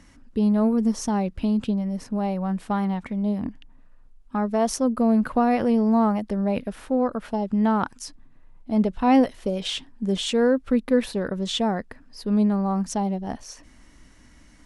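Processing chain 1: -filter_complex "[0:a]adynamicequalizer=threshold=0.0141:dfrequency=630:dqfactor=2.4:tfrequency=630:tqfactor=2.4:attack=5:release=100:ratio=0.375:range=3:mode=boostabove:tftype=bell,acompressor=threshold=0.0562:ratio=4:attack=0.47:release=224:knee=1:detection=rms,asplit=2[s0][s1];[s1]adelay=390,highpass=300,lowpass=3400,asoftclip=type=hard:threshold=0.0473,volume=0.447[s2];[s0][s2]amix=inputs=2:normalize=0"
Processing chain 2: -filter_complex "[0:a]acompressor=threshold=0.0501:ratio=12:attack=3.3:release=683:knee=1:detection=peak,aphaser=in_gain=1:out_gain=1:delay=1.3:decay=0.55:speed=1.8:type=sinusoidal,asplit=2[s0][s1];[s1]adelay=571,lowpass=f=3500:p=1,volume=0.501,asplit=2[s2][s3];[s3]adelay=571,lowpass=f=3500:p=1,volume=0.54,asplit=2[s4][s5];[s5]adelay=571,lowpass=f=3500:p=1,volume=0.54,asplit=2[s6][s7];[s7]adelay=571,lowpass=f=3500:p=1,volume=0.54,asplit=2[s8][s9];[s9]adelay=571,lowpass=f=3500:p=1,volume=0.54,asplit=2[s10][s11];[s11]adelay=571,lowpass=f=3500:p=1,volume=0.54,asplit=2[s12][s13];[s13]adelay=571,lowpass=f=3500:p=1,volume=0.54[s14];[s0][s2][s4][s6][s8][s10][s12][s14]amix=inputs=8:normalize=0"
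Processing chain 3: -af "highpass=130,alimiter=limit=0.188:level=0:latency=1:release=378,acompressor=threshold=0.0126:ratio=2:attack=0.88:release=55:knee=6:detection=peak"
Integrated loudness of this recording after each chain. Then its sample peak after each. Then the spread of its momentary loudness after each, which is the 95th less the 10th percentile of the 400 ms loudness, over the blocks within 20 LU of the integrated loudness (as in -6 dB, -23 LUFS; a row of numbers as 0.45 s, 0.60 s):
-30.5 LUFS, -29.5 LUFS, -35.0 LUFS; -18.0 dBFS, -14.0 dBFS, -22.0 dBFS; 9 LU, 7 LU, 8 LU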